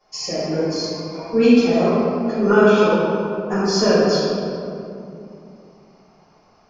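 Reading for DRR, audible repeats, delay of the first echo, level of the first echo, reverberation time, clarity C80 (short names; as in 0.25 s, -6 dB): -15.5 dB, none, none, none, 2.7 s, -2.0 dB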